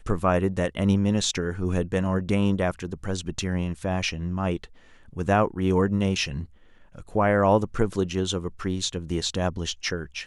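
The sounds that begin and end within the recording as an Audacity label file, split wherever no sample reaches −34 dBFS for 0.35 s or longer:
5.160000	6.440000	sound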